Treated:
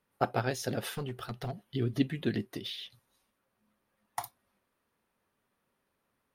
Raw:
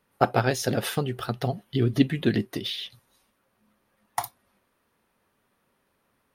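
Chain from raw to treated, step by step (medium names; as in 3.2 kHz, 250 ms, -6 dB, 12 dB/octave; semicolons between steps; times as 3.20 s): 0.85–1.66 s: hard clipper -22 dBFS, distortion -18 dB; trim -8 dB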